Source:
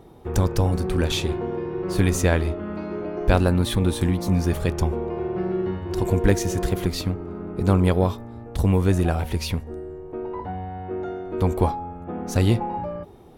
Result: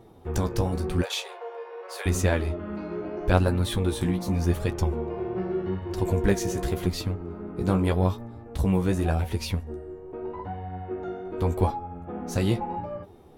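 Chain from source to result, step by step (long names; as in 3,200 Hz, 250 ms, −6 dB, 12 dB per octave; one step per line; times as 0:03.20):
0:01.02–0:02.06: Butterworth high-pass 460 Hz 72 dB per octave
flanger 0.85 Hz, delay 8.3 ms, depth 9.2 ms, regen +30%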